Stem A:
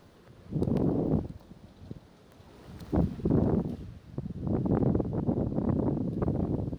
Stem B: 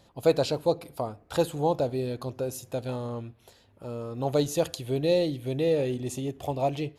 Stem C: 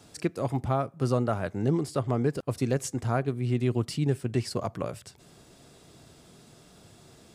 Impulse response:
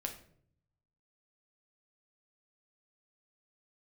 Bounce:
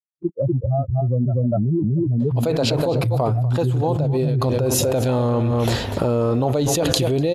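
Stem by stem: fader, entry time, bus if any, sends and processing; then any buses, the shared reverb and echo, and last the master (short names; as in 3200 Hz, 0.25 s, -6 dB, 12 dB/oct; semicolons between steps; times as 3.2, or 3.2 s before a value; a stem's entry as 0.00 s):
off
-4.0 dB, 2.20 s, no send, echo send -14 dB, dry
-1.0 dB, 0.00 s, no send, echo send -5 dB, spectral expander 4:1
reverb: off
echo: echo 0.245 s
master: high shelf 4400 Hz -9 dB; fast leveller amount 100%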